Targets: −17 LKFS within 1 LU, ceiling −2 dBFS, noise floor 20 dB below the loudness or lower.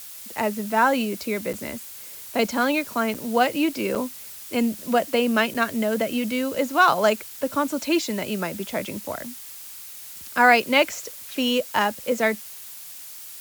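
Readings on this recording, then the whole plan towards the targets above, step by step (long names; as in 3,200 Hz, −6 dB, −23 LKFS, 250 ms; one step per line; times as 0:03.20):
number of dropouts 4; longest dropout 6.6 ms; background noise floor −40 dBFS; target noise floor −44 dBFS; integrated loudness −23.5 LKFS; sample peak −4.0 dBFS; target loudness −17.0 LKFS
→ repair the gap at 0:01.53/0:03.14/0:03.95/0:05.54, 6.6 ms
broadband denoise 6 dB, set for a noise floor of −40 dBFS
level +6.5 dB
brickwall limiter −2 dBFS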